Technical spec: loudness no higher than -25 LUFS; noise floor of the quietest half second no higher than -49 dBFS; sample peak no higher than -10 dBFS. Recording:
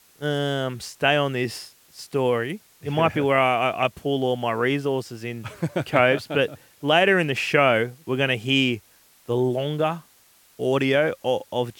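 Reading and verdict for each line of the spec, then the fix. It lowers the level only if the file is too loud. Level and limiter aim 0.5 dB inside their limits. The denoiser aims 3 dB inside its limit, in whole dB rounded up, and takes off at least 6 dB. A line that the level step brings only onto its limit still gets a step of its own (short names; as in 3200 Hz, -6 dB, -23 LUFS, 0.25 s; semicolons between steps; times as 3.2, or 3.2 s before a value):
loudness -23.0 LUFS: fail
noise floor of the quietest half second -57 dBFS: OK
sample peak -3.5 dBFS: fail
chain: gain -2.5 dB; limiter -10.5 dBFS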